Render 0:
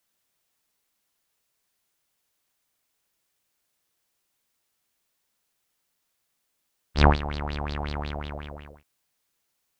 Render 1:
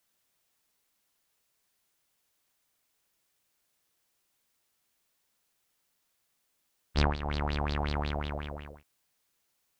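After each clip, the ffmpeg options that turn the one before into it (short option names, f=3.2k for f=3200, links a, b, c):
-af "acompressor=threshold=-23dB:ratio=10"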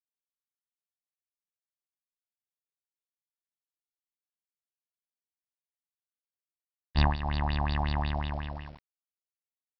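-af "aecho=1:1:1.1:0.74,aresample=11025,aeval=exprs='val(0)*gte(abs(val(0)),0.00447)':c=same,aresample=44100,volume=-1dB"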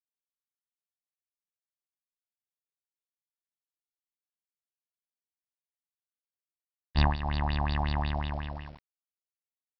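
-af anull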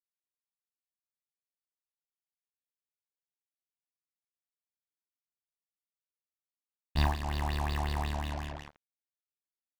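-filter_complex "[0:a]asplit=2[a][b];[b]adelay=38,volume=-9.5dB[c];[a][c]amix=inputs=2:normalize=0,acrusher=bits=5:mix=0:aa=0.5,volume=-3.5dB"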